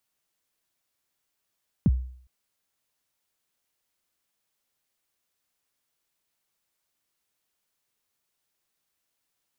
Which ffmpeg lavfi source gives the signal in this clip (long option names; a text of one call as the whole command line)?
ffmpeg -f lavfi -i "aevalsrc='0.211*pow(10,-3*t/0.56)*sin(2*PI*(250*0.037/log(63/250)*(exp(log(63/250)*min(t,0.037)/0.037)-1)+63*max(t-0.037,0)))':duration=0.41:sample_rate=44100" out.wav